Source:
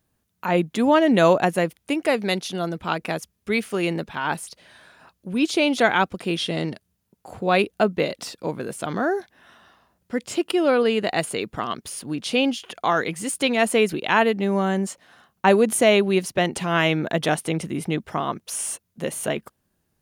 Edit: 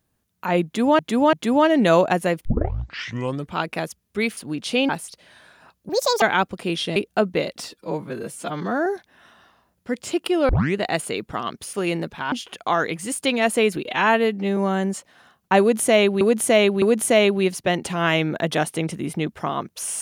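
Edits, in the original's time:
0.65–0.99 loop, 3 plays
1.77 tape start 1.10 s
3.69–4.28 swap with 11.97–12.49
5.28–5.83 speed 167%
6.57–7.59 cut
8.32–9.1 stretch 1.5×
10.73 tape start 0.27 s
14.02–14.5 stretch 1.5×
15.53–16.14 loop, 3 plays

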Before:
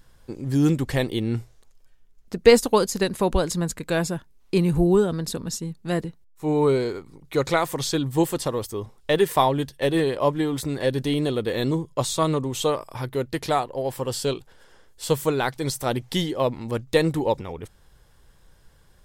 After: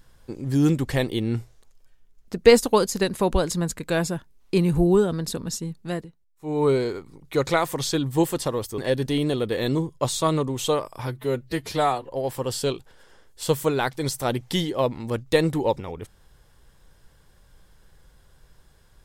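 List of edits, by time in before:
5.79–6.69 dip -11 dB, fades 0.28 s
8.78–10.74 cut
13.03–13.73 stretch 1.5×

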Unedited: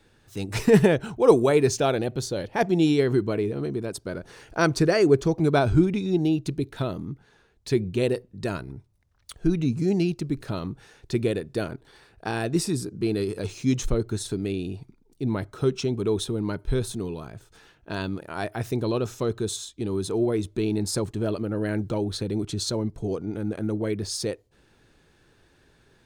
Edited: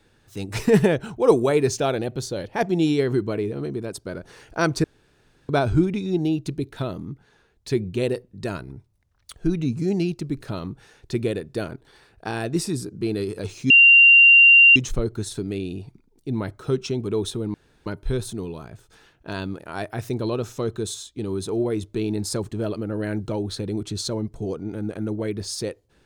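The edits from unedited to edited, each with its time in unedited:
4.84–5.49 room tone
13.7 add tone 2770 Hz -8 dBFS 1.06 s
16.48 insert room tone 0.32 s

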